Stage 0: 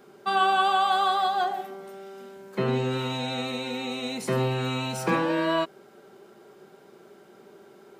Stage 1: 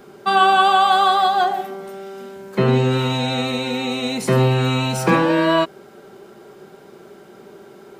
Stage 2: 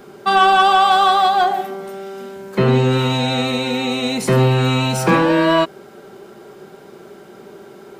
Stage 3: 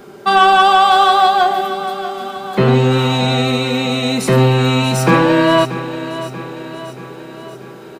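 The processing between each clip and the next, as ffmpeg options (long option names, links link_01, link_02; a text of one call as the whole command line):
ffmpeg -i in.wav -af "lowshelf=frequency=87:gain=11,volume=8dB" out.wav
ffmpeg -i in.wav -af "acontrast=52,volume=-3dB" out.wav
ffmpeg -i in.wav -af "aecho=1:1:634|1268|1902|2536|3170|3804:0.224|0.125|0.0702|0.0393|0.022|0.0123,volume=2.5dB" out.wav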